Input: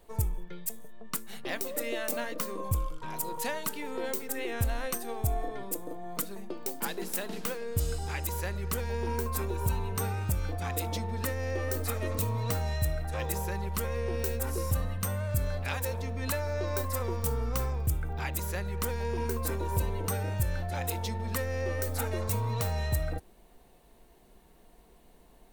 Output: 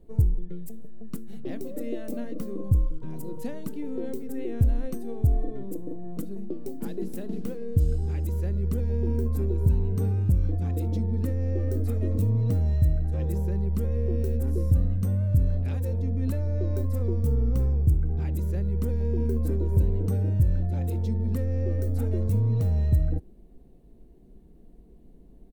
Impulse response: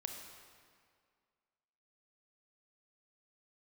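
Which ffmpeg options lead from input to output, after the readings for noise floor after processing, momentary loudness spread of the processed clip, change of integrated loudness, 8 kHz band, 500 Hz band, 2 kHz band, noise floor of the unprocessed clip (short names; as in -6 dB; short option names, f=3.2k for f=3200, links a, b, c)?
-51 dBFS, 12 LU, +5.5 dB, under -10 dB, 0.0 dB, under -10 dB, -58 dBFS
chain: -af "firequalizer=gain_entry='entry(280,0);entry(540,-11);entry(940,-23)':delay=0.05:min_phase=1,volume=8.5dB"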